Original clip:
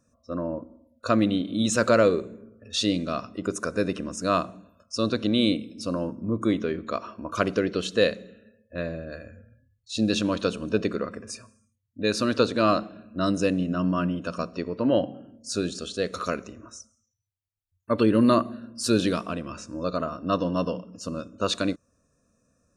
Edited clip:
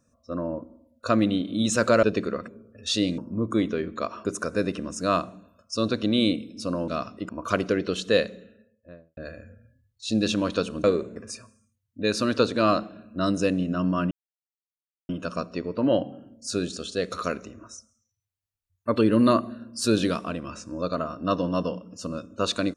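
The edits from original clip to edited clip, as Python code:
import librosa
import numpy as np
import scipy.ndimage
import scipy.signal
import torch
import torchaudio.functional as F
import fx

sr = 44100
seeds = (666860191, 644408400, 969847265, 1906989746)

y = fx.studio_fade_out(x, sr, start_s=8.22, length_s=0.82)
y = fx.edit(y, sr, fx.swap(start_s=2.03, length_s=0.32, other_s=10.71, other_length_s=0.45),
    fx.swap(start_s=3.05, length_s=0.41, other_s=6.09, other_length_s=1.07),
    fx.insert_silence(at_s=14.11, length_s=0.98), tone=tone)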